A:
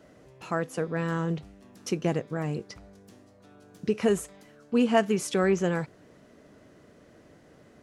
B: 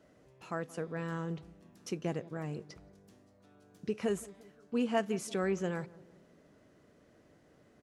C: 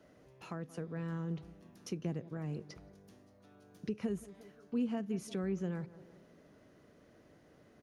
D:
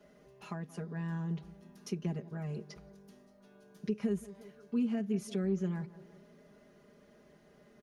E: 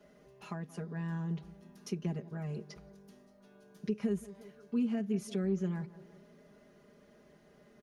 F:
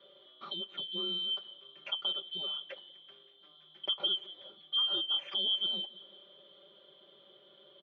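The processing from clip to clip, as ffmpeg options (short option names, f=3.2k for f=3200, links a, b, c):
-filter_complex "[0:a]asplit=2[a][b];[b]adelay=173,lowpass=f=880:p=1,volume=-18.5dB,asplit=2[c][d];[d]adelay=173,lowpass=f=880:p=1,volume=0.51,asplit=2[e][f];[f]adelay=173,lowpass=f=880:p=1,volume=0.51,asplit=2[g][h];[h]adelay=173,lowpass=f=880:p=1,volume=0.51[i];[a][c][e][g][i]amix=inputs=5:normalize=0,volume=-8.5dB"
-filter_complex "[0:a]bandreject=f=7.7k:w=5.6,acrossover=split=300[a][b];[b]acompressor=threshold=-47dB:ratio=4[c];[a][c]amix=inputs=2:normalize=0,volume=1dB"
-af "aecho=1:1:4.9:0.95,volume=-1.5dB"
-af anull
-af "afftfilt=real='real(if(lt(b,272),68*(eq(floor(b/68),0)*1+eq(floor(b/68),1)*3+eq(floor(b/68),2)*0+eq(floor(b/68),3)*2)+mod(b,68),b),0)':imag='imag(if(lt(b,272),68*(eq(floor(b/68),0)*1+eq(floor(b/68),1)*3+eq(floor(b/68),2)*0+eq(floor(b/68),3)*2)+mod(b,68),b),0)':win_size=2048:overlap=0.75,highpass=f=170:w=0.5412,highpass=f=170:w=1.3066,equalizer=f=380:t=q:w=4:g=8,equalizer=f=600:t=q:w=4:g=9,equalizer=f=1.3k:t=q:w=4:g=5,lowpass=f=2.8k:w=0.5412,lowpass=f=2.8k:w=1.3066,volume=6dB"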